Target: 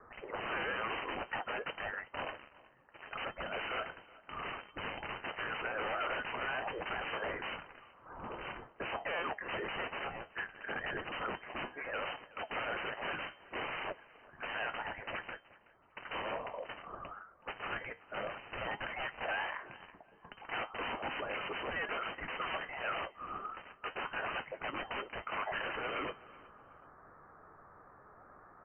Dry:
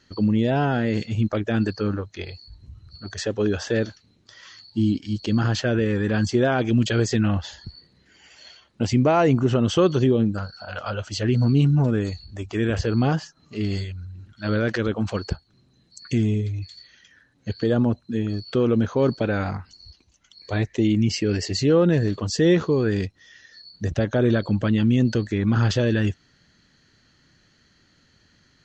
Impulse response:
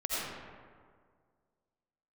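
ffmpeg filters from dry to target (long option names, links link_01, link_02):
-filter_complex "[0:a]highpass=frequency=1300:width=0.5412,highpass=frequency=1300:width=1.3066,asettb=1/sr,asplit=3[link_01][link_02][link_03];[link_01]atrim=end=9.174[link_04];[link_02]atrim=start=9.17:end=11.47,asetpts=PTS-STARTPTS,afade=type=in:duration=0.004:curve=qsin,afade=type=out:start_time=2.296:duration=0.004:curve=qsin,agate=range=-33dB:threshold=-40dB:ratio=3:detection=peak[link_05];[link_03]atrim=start=11.466[link_06];[link_04][link_05]acrossfade=duration=0.004:curve1=hsin:curve2=qsin[link_07];[link_07][link_06]acrossfade=duration=0.004:curve1=qsin:curve2=hsin,acompressor=threshold=-35dB:ratio=8,aexciter=amount=6.9:drive=2:freq=2200,aeval=exprs='(mod(21.1*val(0)+1,2)-1)/21.1':channel_layout=same,flanger=delay=4.8:depth=9.6:regen=69:speed=0.64:shape=sinusoidal,asoftclip=type=hard:threshold=-38dB,aecho=1:1:374|748:0.0841|0.0219,lowpass=frequency=2600:width_type=q:width=0.5098,lowpass=frequency=2600:width_type=q:width=0.6013,lowpass=frequency=2600:width_type=q:width=0.9,lowpass=frequency=2600:width_type=q:width=2.563,afreqshift=-3100,volume=8.5dB"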